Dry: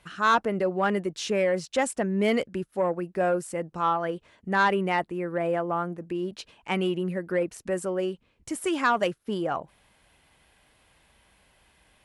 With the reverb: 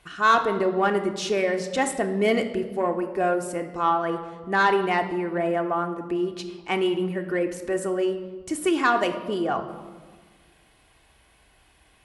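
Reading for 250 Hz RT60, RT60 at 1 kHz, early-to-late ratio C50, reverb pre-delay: 1.8 s, 1.4 s, 10.0 dB, 3 ms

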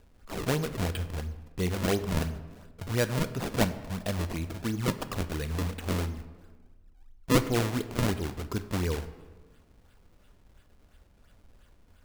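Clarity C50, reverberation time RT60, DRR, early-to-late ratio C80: 13.0 dB, 1.4 s, 10.0 dB, 14.5 dB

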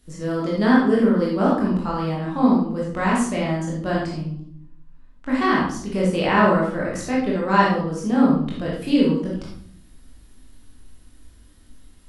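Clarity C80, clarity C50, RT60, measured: 6.0 dB, 1.0 dB, 0.60 s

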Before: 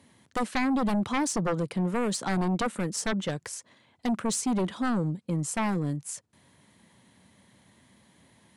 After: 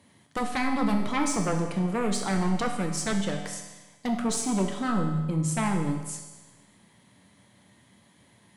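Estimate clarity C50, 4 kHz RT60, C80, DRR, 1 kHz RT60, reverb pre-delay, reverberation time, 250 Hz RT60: 5.5 dB, 1.2 s, 7.5 dB, 2.0 dB, 1.2 s, 7 ms, 1.2 s, 1.2 s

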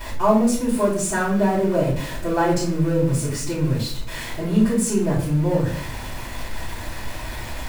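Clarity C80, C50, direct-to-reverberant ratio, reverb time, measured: 9.0 dB, 5.0 dB, -10.0 dB, 0.55 s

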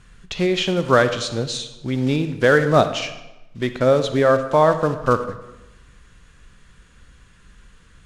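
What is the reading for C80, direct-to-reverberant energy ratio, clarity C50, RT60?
12.5 dB, 10.0 dB, 10.5 dB, 1.0 s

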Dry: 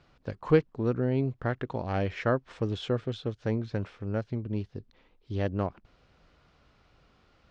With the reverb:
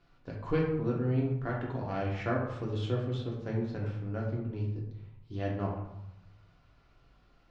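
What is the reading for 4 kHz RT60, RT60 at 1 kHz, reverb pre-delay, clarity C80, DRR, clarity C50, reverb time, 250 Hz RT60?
0.50 s, 0.90 s, 3 ms, 6.5 dB, -3.5 dB, 3.5 dB, 0.85 s, 1.2 s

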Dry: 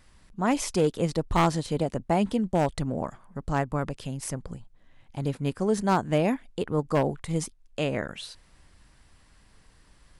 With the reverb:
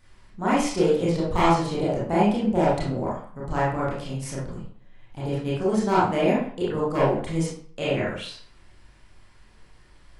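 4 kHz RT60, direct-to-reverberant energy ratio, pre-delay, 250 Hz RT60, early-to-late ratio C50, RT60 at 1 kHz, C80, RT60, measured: 0.40 s, -8.0 dB, 25 ms, 0.50 s, 2.0 dB, 0.55 s, 7.5 dB, 0.50 s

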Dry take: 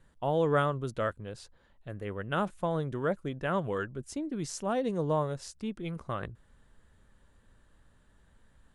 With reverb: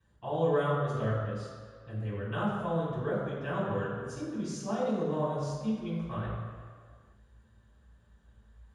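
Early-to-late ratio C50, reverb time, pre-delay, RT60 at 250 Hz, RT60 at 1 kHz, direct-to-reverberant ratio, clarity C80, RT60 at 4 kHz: -0.5 dB, 1.9 s, 3 ms, 1.8 s, 1.9 s, -10.5 dB, 1.5 dB, 1.4 s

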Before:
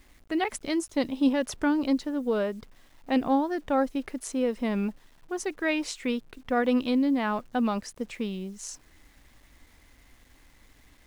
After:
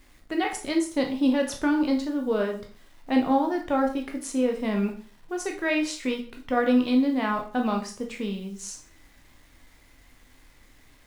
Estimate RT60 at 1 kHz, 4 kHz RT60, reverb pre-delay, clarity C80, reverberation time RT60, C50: 0.40 s, 0.40 s, 6 ms, 14.0 dB, 0.40 s, 9.0 dB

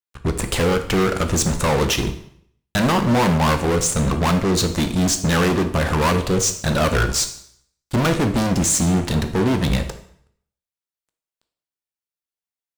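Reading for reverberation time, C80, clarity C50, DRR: 0.60 s, 14.0 dB, 10.5 dB, 7.0 dB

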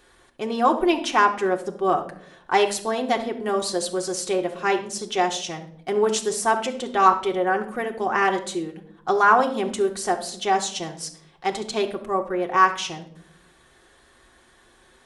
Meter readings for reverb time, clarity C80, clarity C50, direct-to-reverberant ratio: 0.65 s, 15.5 dB, 11.5 dB, 1.0 dB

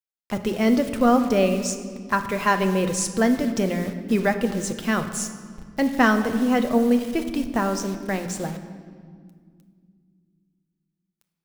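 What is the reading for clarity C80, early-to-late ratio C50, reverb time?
11.0 dB, 9.5 dB, 2.0 s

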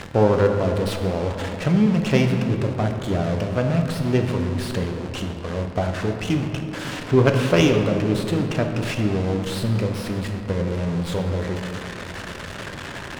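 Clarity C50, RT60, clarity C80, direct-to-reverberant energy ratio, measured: 5.5 dB, 3.0 s, 6.5 dB, 3.5 dB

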